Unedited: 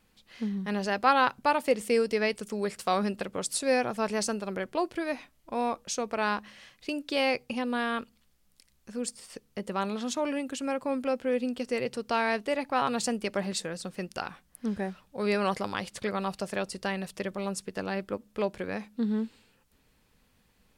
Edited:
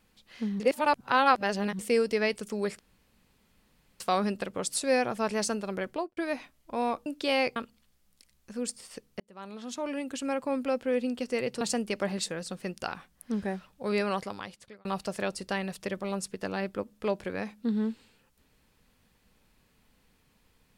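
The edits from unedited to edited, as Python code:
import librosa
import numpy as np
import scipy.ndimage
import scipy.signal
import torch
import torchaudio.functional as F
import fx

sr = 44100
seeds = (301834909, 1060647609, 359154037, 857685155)

y = fx.studio_fade_out(x, sr, start_s=4.69, length_s=0.27)
y = fx.edit(y, sr, fx.reverse_span(start_s=0.6, length_s=1.19),
    fx.insert_room_tone(at_s=2.79, length_s=1.21),
    fx.cut(start_s=5.85, length_s=1.09),
    fx.cut(start_s=7.44, length_s=0.51),
    fx.fade_in_span(start_s=9.59, length_s=1.03),
    fx.cut(start_s=12.0, length_s=0.95),
    fx.fade_out_span(start_s=15.21, length_s=0.98), tone=tone)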